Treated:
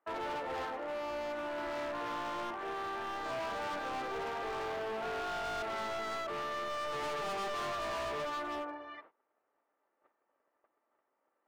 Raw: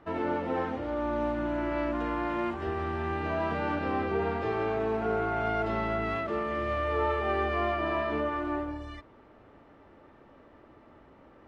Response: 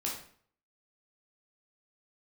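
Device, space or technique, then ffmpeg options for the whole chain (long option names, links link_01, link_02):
walkie-talkie: -filter_complex "[0:a]asettb=1/sr,asplit=3[link_01][link_02][link_03];[link_01]atrim=end=7.034[link_04];[link_02]atrim=start=7.03:end=8.25,asetpts=PTS-STARTPTS,afade=type=in:duration=0.004:curve=qsin,afade=type=out:start_time=1.216:duration=0.004:curve=qsin,aecho=1:1:4.9:0.71,atrim=end_sample=53802[link_05];[link_03]atrim=start=8.246[link_06];[link_04][link_05]acrossfade=duration=0.004:curve1=hsin:curve2=qsin[link_07];[link_07][link_06]acrossfade=duration=0.004:curve1=qsin:curve2=hsin,highpass=590,lowpass=2300,asoftclip=type=hard:threshold=-36.5dB,agate=range=-22dB:threshold=-56dB:ratio=16:detection=peak,volume=1dB"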